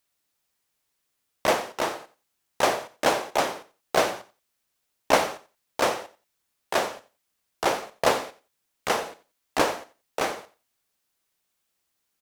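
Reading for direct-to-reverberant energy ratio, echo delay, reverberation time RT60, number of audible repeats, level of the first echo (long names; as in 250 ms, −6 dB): no reverb audible, 89 ms, no reverb audible, 2, −17.0 dB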